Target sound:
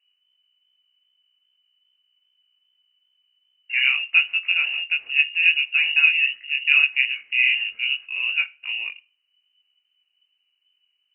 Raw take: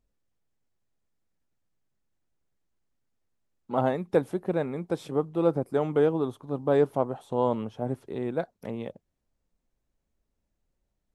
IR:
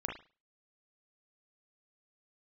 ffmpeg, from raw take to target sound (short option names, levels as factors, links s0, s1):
-filter_complex "[0:a]lowpass=f=2600:t=q:w=0.5098,lowpass=f=2600:t=q:w=0.6013,lowpass=f=2600:t=q:w=0.9,lowpass=f=2600:t=q:w=2.563,afreqshift=-3000,flanger=delay=20:depth=2.8:speed=2.5,asplit=2[s0][s1];[1:a]atrim=start_sample=2205,asetrate=39690,aresample=44100[s2];[s1][s2]afir=irnorm=-1:irlink=0,volume=0.119[s3];[s0][s3]amix=inputs=2:normalize=0,crystalizer=i=6:c=0"